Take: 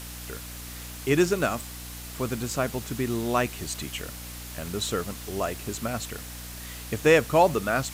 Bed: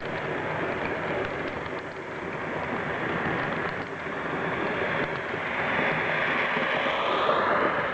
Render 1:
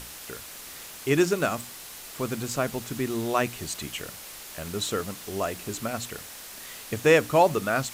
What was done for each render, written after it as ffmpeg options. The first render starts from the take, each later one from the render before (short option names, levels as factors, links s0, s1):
-af "bandreject=f=60:t=h:w=6,bandreject=f=120:t=h:w=6,bandreject=f=180:t=h:w=6,bandreject=f=240:t=h:w=6,bandreject=f=300:t=h:w=6"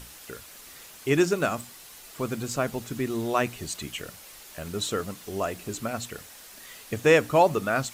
-af "afftdn=nr=6:nf=-43"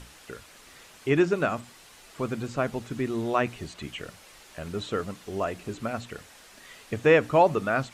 -filter_complex "[0:a]acrossover=split=3400[s0][s1];[s1]acompressor=threshold=0.00355:ratio=4:attack=1:release=60[s2];[s0][s2]amix=inputs=2:normalize=0,lowpass=10000"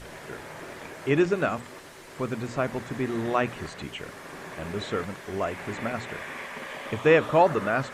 -filter_complex "[1:a]volume=0.251[s0];[0:a][s0]amix=inputs=2:normalize=0"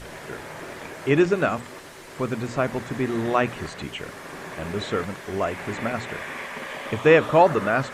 -af "volume=1.5"